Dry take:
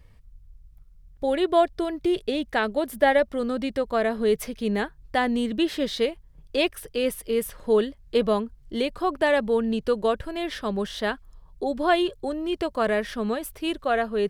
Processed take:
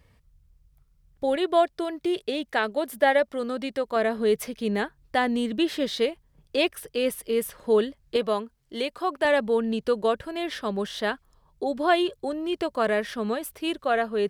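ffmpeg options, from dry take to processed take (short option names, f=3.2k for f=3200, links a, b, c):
-af "asetnsamples=n=441:p=0,asendcmd='1.36 highpass f 330;3.96 highpass f 130;8.16 highpass f 470;9.25 highpass f 160',highpass=f=120:p=1"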